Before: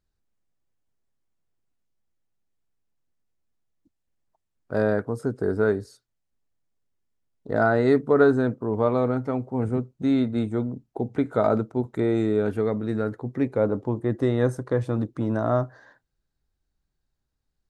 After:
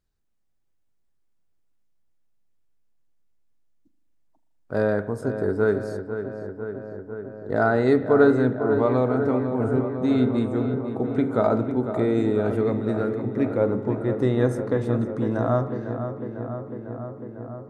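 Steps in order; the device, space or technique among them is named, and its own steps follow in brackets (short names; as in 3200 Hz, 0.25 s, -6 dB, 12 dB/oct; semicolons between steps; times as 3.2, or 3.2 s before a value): dub delay into a spring reverb (darkening echo 0.5 s, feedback 77%, low-pass 2900 Hz, level -9 dB; spring tank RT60 1 s, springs 39 ms, chirp 50 ms, DRR 12 dB)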